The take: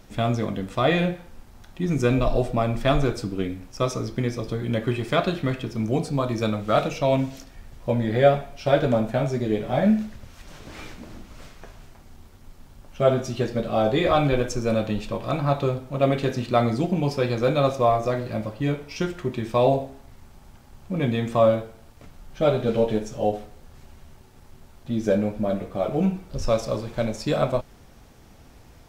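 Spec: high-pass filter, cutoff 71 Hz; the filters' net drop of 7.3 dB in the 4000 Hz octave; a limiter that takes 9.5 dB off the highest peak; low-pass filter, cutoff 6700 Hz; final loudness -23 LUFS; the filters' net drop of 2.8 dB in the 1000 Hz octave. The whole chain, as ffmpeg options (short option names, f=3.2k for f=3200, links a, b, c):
-af "highpass=71,lowpass=6.7k,equalizer=f=1k:t=o:g=-4,equalizer=f=4k:t=o:g=-8.5,volume=4dB,alimiter=limit=-11.5dB:level=0:latency=1"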